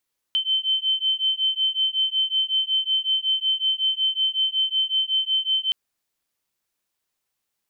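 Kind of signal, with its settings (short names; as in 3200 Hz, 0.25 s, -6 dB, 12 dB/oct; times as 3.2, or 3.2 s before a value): beating tones 3080 Hz, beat 5.4 Hz, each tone -23 dBFS 5.37 s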